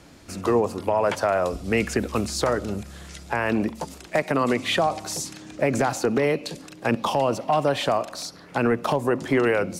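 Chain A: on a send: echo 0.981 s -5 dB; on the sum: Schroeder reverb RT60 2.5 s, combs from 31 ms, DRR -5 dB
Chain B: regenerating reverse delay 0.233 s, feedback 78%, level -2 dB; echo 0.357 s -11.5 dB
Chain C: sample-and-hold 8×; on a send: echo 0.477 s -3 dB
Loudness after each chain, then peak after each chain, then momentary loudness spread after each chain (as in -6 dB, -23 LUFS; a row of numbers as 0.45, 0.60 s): -17.5, -20.5, -23.0 LUFS; -2.5, -5.0, -7.5 dBFS; 5, 4, 6 LU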